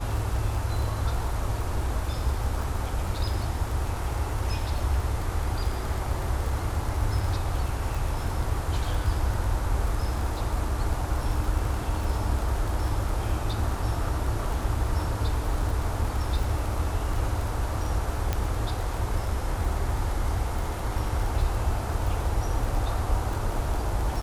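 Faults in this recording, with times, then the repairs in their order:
crackle 21/s -29 dBFS
18.33 pop -12 dBFS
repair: de-click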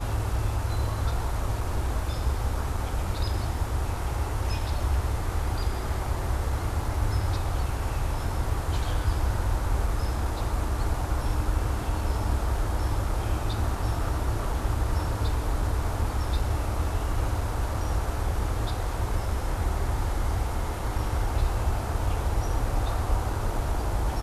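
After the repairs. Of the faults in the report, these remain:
none

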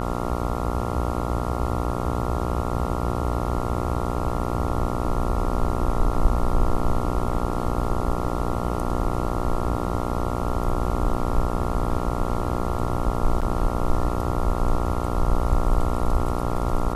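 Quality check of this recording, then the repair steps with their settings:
buzz 60 Hz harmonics 23 -27 dBFS
13.41–13.42 gap 7.1 ms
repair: de-hum 60 Hz, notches 23; interpolate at 13.41, 7.1 ms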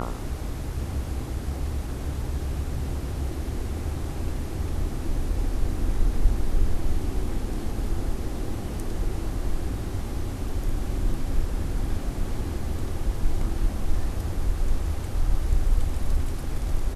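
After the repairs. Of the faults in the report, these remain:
none

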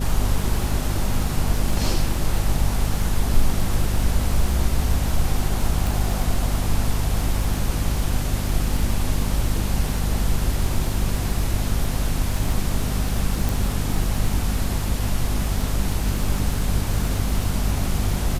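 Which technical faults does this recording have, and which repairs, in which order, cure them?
crackle 39/s -26 dBFS
hum 50 Hz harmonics 5 -25 dBFS
5.87 pop
13.49 pop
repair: de-click; de-hum 50 Hz, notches 5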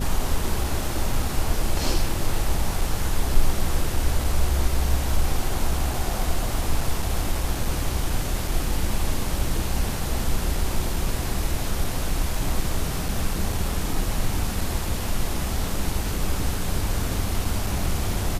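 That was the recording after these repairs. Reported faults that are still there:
none

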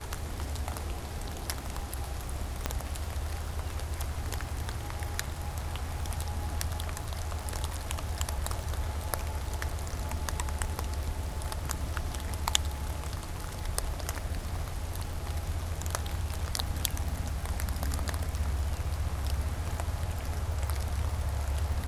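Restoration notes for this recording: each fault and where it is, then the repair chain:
crackle 40/s -38 dBFS
2.66 pop -13 dBFS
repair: de-click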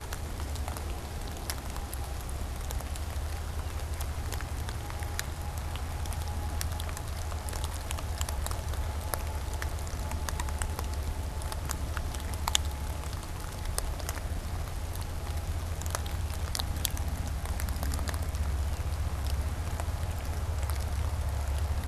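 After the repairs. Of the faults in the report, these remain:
none

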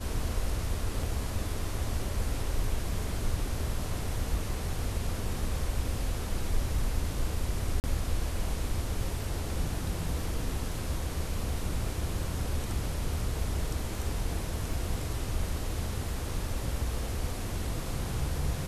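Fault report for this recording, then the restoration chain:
1.03 gap 3.1 ms
7.8–7.84 gap 39 ms
14.73 gap 2.9 ms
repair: interpolate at 1.03, 3.1 ms; interpolate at 7.8, 39 ms; interpolate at 14.73, 2.9 ms

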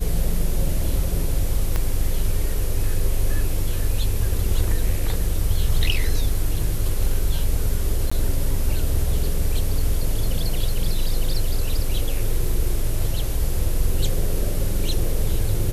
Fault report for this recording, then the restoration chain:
1.76 pop -10 dBFS
8.1–8.12 gap 15 ms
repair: de-click; interpolate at 8.1, 15 ms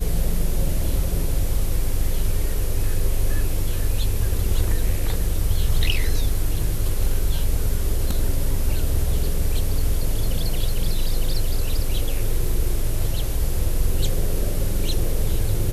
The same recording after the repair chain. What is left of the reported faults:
1.76 pop

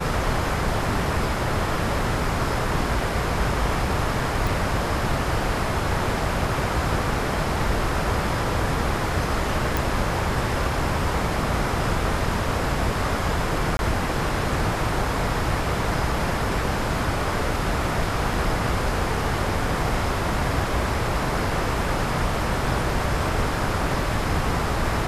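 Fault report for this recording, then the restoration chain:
4.47 pop
9.77 pop
13.77–13.79 gap 21 ms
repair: de-click; interpolate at 13.77, 21 ms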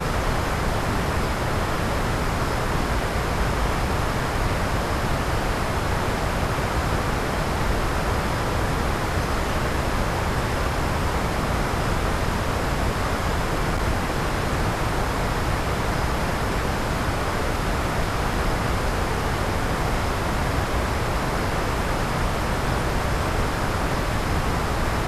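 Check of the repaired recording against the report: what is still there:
none

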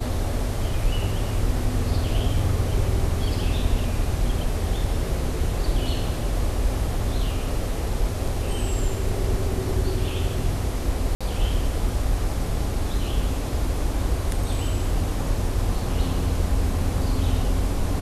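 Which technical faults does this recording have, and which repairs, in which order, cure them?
11.15–11.21 gap 56 ms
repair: interpolate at 11.15, 56 ms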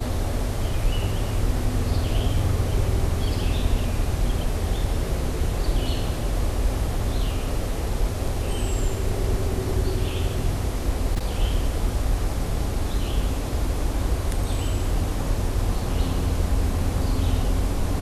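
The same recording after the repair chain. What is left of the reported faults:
none

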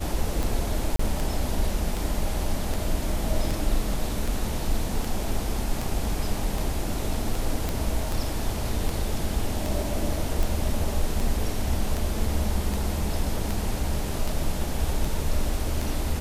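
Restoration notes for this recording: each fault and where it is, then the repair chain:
tick 78 rpm
0.96–0.99 gap 34 ms
7.69 pop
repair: de-click; interpolate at 0.96, 34 ms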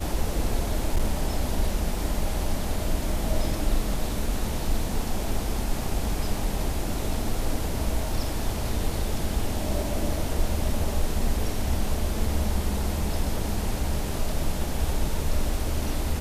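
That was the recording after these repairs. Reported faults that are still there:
none

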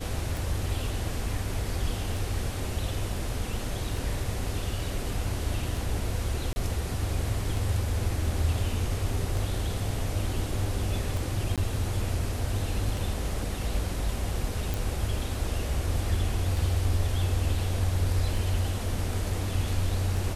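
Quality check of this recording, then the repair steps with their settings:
tick 33 1/3 rpm
6.53–6.56 gap 30 ms
11.56–11.58 gap 17 ms
14.74 pop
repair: de-click; interpolate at 6.53, 30 ms; interpolate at 11.56, 17 ms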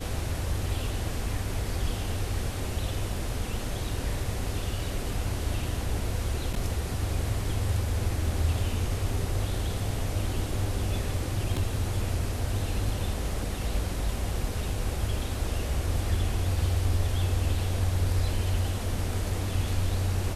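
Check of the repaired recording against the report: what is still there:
none

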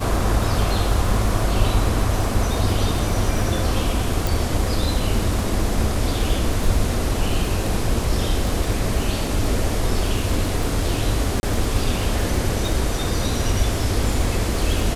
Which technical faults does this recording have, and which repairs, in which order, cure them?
crackle 47/s -26 dBFS
4.27 pop
11.4–11.43 gap 30 ms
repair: de-click; interpolate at 11.4, 30 ms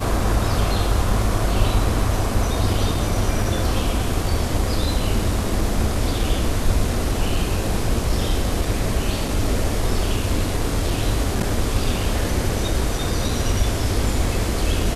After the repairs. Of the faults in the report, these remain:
4.27 pop

